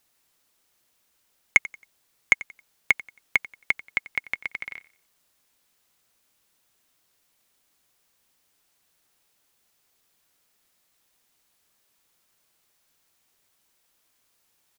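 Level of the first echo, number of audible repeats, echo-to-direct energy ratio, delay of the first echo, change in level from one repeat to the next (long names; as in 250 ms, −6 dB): −19.5 dB, 2, −19.0 dB, 90 ms, −10.0 dB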